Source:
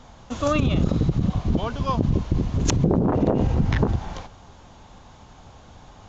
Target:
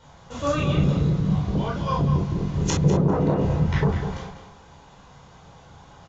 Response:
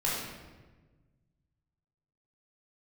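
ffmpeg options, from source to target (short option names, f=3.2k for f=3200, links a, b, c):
-filter_complex "[0:a]highpass=f=83:p=1,asplit=2[a][b];[b]adelay=200,lowpass=f=3.8k:p=1,volume=-8dB,asplit=2[c][d];[d]adelay=200,lowpass=f=3.8k:p=1,volume=0.25,asplit=2[e][f];[f]adelay=200,lowpass=f=3.8k:p=1,volume=0.25[g];[a][c][e][g]amix=inputs=4:normalize=0[h];[1:a]atrim=start_sample=2205,atrim=end_sample=3087[i];[h][i]afir=irnorm=-1:irlink=0,volume=-6.5dB"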